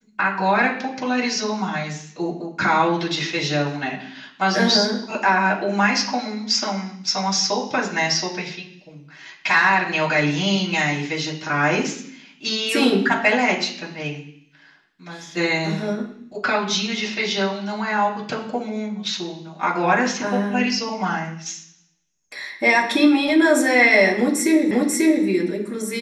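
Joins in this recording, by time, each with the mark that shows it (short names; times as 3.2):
24.71 repeat of the last 0.54 s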